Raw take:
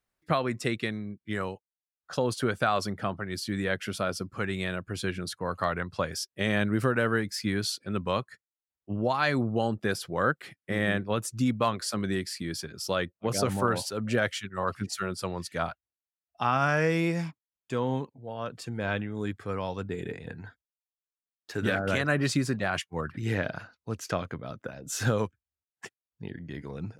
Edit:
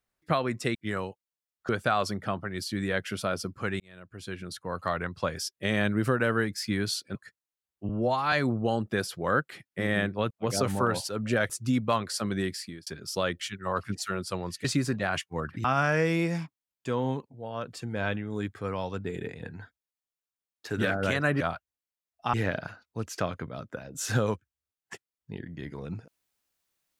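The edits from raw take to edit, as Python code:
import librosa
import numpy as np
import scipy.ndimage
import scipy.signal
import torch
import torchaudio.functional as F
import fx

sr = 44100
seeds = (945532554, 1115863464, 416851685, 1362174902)

y = fx.edit(x, sr, fx.cut(start_s=0.75, length_s=0.44),
    fx.cut(start_s=2.13, length_s=0.32),
    fx.fade_in_span(start_s=4.56, length_s=1.65, curve='qsin'),
    fx.cut(start_s=7.91, length_s=0.3),
    fx.stretch_span(start_s=8.95, length_s=0.29, factor=1.5),
    fx.fade_out_span(start_s=12.28, length_s=0.31),
    fx.move(start_s=13.12, length_s=1.19, to_s=11.22),
    fx.swap(start_s=15.56, length_s=0.93, other_s=22.25, other_length_s=1.0), tone=tone)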